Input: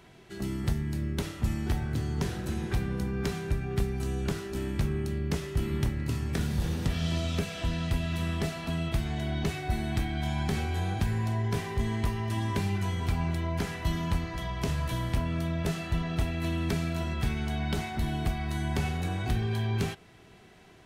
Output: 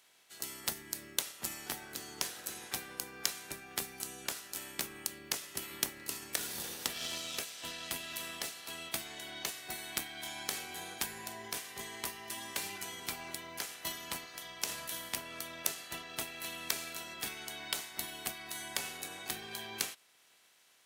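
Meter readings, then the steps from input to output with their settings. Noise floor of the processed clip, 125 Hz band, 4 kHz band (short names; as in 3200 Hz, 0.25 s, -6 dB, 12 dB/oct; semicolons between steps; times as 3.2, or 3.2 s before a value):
-66 dBFS, -29.0 dB, +1.0 dB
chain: spectral limiter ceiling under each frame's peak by 16 dB; RIAA curve recording; added harmonics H 3 -13 dB, 7 -33 dB, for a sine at -5 dBFS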